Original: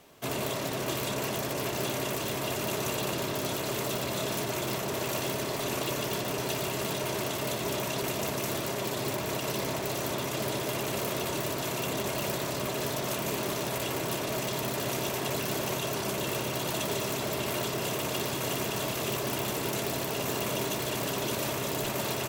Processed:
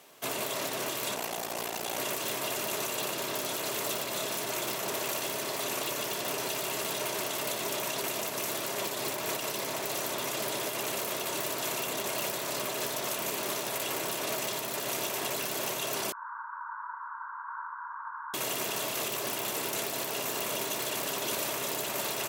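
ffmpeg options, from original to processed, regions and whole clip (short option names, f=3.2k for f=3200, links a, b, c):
-filter_complex "[0:a]asettb=1/sr,asplit=3[a][b][c];[a]atrim=end=1.154[d];[b]atrim=start=1.15:end=1.98,asetpts=PTS-STARTPTS,afade=t=in:d=0.004:c=qsin,afade=t=out:st=0.826:d=0.004:c=qsin,aeval=exprs='val(0)*sin(2*PI*29*n/s)':c=same,equalizer=f=770:w=4.2:g=6.5[e];[c]atrim=start=1.976[f];[d][e]acrossfade=d=0.004:c1=hsin:c2=qsin[g];[g][f]acrossfade=d=0.004:c1=qsin:c2=hsin,asettb=1/sr,asplit=3[h][i][j];[h]atrim=end=16.124[k];[i]atrim=start=16.12:end=18.34,asetpts=PTS-STARTPTS,afade=t=in:d=0.004:c=qsin,afade=t=out:st=2.216:d=0.004:c=qsin,asuperpass=centerf=1200:order=12:qfactor=1.7,aecho=1:1:2:0.31,atrim=end_sample=97902[l];[j]atrim=start=18.336[m];[k][l]acrossfade=d=0.004:c1=hsin:c2=qsin[n];[n][m]acrossfade=d=0.004:c1=qsin:c2=hsin,highpass=f=520:p=1,alimiter=level_in=1dB:limit=-24dB:level=0:latency=1:release=144,volume=-1dB,equalizer=f=11k:t=o:w=1.1:g=3.5,volume=2dB"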